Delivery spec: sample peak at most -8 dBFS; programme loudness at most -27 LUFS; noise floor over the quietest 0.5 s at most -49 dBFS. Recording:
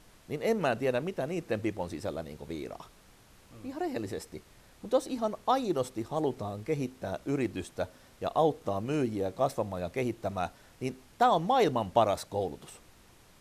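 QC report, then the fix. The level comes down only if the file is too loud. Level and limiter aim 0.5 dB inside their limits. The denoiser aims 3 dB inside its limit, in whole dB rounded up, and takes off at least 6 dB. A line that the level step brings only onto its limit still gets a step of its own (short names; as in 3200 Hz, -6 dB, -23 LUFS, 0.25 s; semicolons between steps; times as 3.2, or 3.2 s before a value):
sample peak -11.0 dBFS: OK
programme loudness -31.5 LUFS: OK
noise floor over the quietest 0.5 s -58 dBFS: OK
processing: none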